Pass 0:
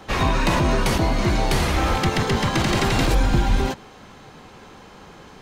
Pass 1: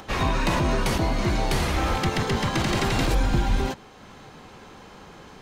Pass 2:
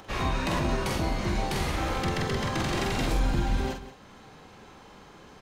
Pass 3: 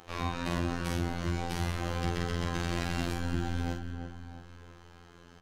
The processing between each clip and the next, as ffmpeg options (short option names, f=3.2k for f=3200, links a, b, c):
-af "acompressor=mode=upward:threshold=-36dB:ratio=2.5,volume=-3.5dB"
-filter_complex "[0:a]asplit=2[a][b];[b]adelay=46,volume=-4.5dB[c];[a][c]amix=inputs=2:normalize=0,aecho=1:1:178:0.188,volume=-6dB"
-filter_complex "[0:a]volume=18dB,asoftclip=hard,volume=-18dB,afftfilt=real='hypot(re,im)*cos(PI*b)':imag='0':win_size=2048:overlap=0.75,asplit=2[a][b];[b]adelay=336,lowpass=f=1.7k:p=1,volume=-6.5dB,asplit=2[c][d];[d]adelay=336,lowpass=f=1.7k:p=1,volume=0.46,asplit=2[e][f];[f]adelay=336,lowpass=f=1.7k:p=1,volume=0.46,asplit=2[g][h];[h]adelay=336,lowpass=f=1.7k:p=1,volume=0.46,asplit=2[i][j];[j]adelay=336,lowpass=f=1.7k:p=1,volume=0.46[k];[a][c][e][g][i][k]amix=inputs=6:normalize=0,volume=-2.5dB"